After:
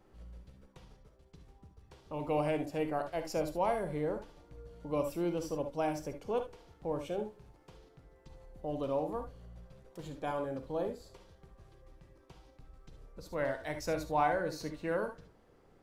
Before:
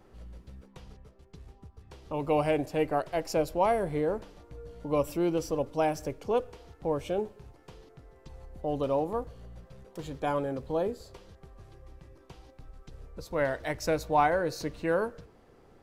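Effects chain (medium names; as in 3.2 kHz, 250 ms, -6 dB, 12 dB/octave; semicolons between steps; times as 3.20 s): gated-style reverb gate 90 ms rising, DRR 7 dB; trim -6.5 dB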